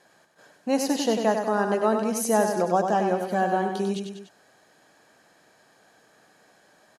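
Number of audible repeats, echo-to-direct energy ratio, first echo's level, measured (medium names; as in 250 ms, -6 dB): 3, -4.5 dB, -6.0 dB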